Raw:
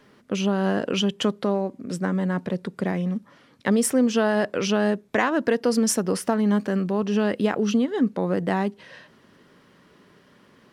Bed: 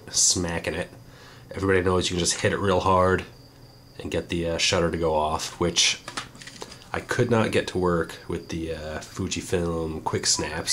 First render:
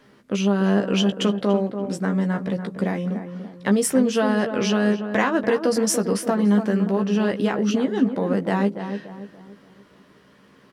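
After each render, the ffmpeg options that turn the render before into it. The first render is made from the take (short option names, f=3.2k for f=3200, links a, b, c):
-filter_complex "[0:a]asplit=2[a][b];[b]adelay=15,volume=-6dB[c];[a][c]amix=inputs=2:normalize=0,asplit=2[d][e];[e]adelay=288,lowpass=f=1.4k:p=1,volume=-8dB,asplit=2[f][g];[g]adelay=288,lowpass=f=1.4k:p=1,volume=0.42,asplit=2[h][i];[i]adelay=288,lowpass=f=1.4k:p=1,volume=0.42,asplit=2[j][k];[k]adelay=288,lowpass=f=1.4k:p=1,volume=0.42,asplit=2[l][m];[m]adelay=288,lowpass=f=1.4k:p=1,volume=0.42[n];[f][h][j][l][n]amix=inputs=5:normalize=0[o];[d][o]amix=inputs=2:normalize=0"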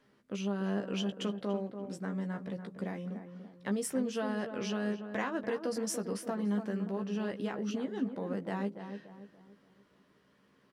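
-af "volume=-14dB"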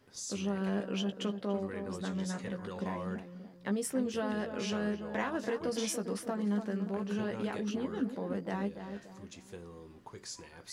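-filter_complex "[1:a]volume=-22.5dB[a];[0:a][a]amix=inputs=2:normalize=0"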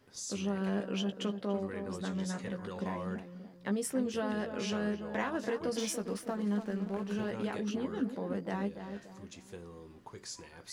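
-filter_complex "[0:a]asettb=1/sr,asplit=3[a][b][c];[a]atrim=end=5.794[d];[b]atrim=start=5.79:end=7.31,asetpts=PTS-STARTPTS,afade=t=in:d=0.004:c=qsin,afade=t=out:st=1.516:d=0.004:c=qsin,aeval=exprs='sgn(val(0))*max(abs(val(0))-0.00211,0)':c=same[e];[c]atrim=start=7.306[f];[d][e]acrossfade=d=0.004:c1=hsin:c2=qsin[g];[g][f]acrossfade=d=0.004:c1=qsin:c2=hsin"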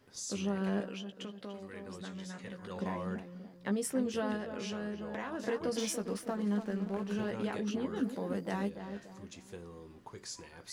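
-filter_complex "[0:a]asettb=1/sr,asplit=3[a][b][c];[a]atrim=end=0.864[d];[b]atrim=start=0.86:end=2.7,asetpts=PTS-STARTPTS,afade=t=in:d=0.004:c=qsin,afade=t=out:st=1.836:d=0.004:c=qsin,acrossover=split=1800|3600[e][f][g];[e]acompressor=threshold=-43dB:ratio=4[h];[f]acompressor=threshold=-50dB:ratio=4[i];[g]acompressor=threshold=-55dB:ratio=4[j];[h][i][j]amix=inputs=3:normalize=0[k];[c]atrim=start=2.696[l];[d][k]acrossfade=d=0.004:c1=hsin:c2=qsin[m];[m][l]acrossfade=d=0.004:c1=qsin:c2=hsin,asettb=1/sr,asplit=3[n][o][p];[n]atrim=end=4.364[q];[o]atrim=start=4.36:end=5.4,asetpts=PTS-STARTPTS,afade=t=in:d=0.004:c=qsin,afade=t=out:st=1.036:d=0.004:c=qsin,acompressor=threshold=-36dB:ratio=3:attack=3.2:release=140:knee=1:detection=peak[r];[p]atrim=start=5.396[s];[q][r]acrossfade=d=0.004:c1=hsin:c2=qsin[t];[t][s]acrossfade=d=0.004:c1=qsin:c2=hsin,asettb=1/sr,asplit=3[u][v][w];[u]atrim=end=7.964[x];[v]atrim=start=7.96:end=8.7,asetpts=PTS-STARTPTS,afade=t=in:d=0.004:c=qsin,afade=t=out:st=0.736:d=0.004:c=qsin,highshelf=f=5.1k:g=10[y];[w]atrim=start=8.696[z];[x][y]acrossfade=d=0.004:c1=hsin:c2=qsin[aa];[aa][z]acrossfade=d=0.004:c1=qsin:c2=hsin"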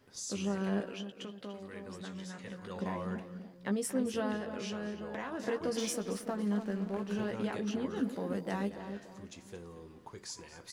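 -af "aecho=1:1:228:0.178"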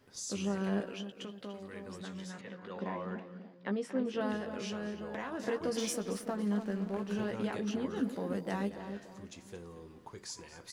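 -filter_complex "[0:a]asettb=1/sr,asplit=3[a][b][c];[a]atrim=end=2.414[d];[b]atrim=start=2.41:end=4.21,asetpts=PTS-STARTPTS,afade=t=in:d=0.004:c=qsin,afade=t=out:st=1.796:d=0.004:c=qsin,highpass=190,lowpass=3.5k[e];[c]atrim=start=4.206[f];[d][e]acrossfade=d=0.004:c1=hsin:c2=qsin[g];[g][f]acrossfade=d=0.004:c1=qsin:c2=hsin"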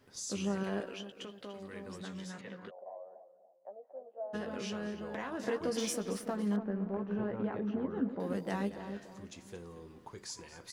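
-filter_complex "[0:a]asettb=1/sr,asplit=3[a][b][c];[a]atrim=end=0.634[d];[b]atrim=start=0.63:end=1.56,asetpts=PTS-STARTPTS,afade=t=in:d=0.004:c=qsin,afade=t=out:st=0.926:d=0.004:c=qsin,equalizer=f=180:w=1.5:g=-6[e];[c]atrim=start=1.556[f];[d][e]acrossfade=d=0.004:c1=hsin:c2=qsin[g];[g][f]acrossfade=d=0.004:c1=qsin:c2=hsin,asplit=3[h][i][j];[h]afade=t=out:st=2.69:d=0.02[k];[i]asuperpass=centerf=650:order=4:qfactor=3.5,afade=t=in:st=2.69:d=0.02,afade=t=out:st=4.33:d=0.02[l];[j]afade=t=in:st=4.33:d=0.02[m];[k][l][m]amix=inputs=3:normalize=0,asettb=1/sr,asplit=3[n][o][p];[n]atrim=end=6.564[q];[o]atrim=start=6.56:end=8.2,asetpts=PTS-STARTPTS,afade=t=in:d=0.004:c=qsin,afade=t=out:st=1.636:d=0.004:c=qsin,lowpass=1.4k[r];[p]atrim=start=8.196[s];[q][r]acrossfade=d=0.004:c1=hsin:c2=qsin[t];[t][s]acrossfade=d=0.004:c1=qsin:c2=hsin"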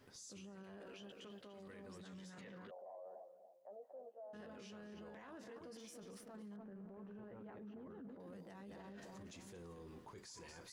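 -af "areverse,acompressor=threshold=-44dB:ratio=12,areverse,alimiter=level_in=23dB:limit=-24dB:level=0:latency=1:release=10,volume=-23dB"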